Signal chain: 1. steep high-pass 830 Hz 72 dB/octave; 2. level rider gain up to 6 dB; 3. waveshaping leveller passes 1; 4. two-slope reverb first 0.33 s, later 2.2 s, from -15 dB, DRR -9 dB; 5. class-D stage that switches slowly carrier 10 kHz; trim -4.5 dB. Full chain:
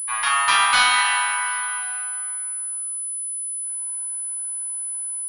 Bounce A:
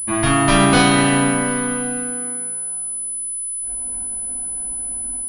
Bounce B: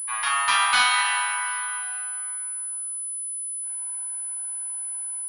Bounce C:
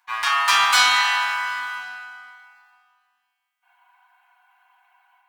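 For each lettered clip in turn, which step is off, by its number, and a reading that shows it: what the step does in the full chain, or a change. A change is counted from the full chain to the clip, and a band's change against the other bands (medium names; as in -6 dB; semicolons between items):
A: 1, 8 kHz band +3.5 dB; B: 3, loudness change -3.0 LU; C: 5, 8 kHz band -10.5 dB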